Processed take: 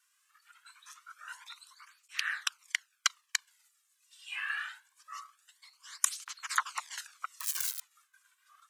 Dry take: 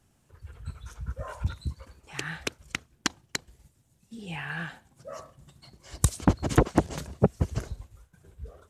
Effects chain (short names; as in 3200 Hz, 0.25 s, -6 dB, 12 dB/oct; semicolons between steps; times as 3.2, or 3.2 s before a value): 7.4–7.8 switching spikes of -23 dBFS; steep high-pass 1100 Hz 48 dB/oct; tape flanging out of phase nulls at 0.24 Hz, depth 2.4 ms; gain +4 dB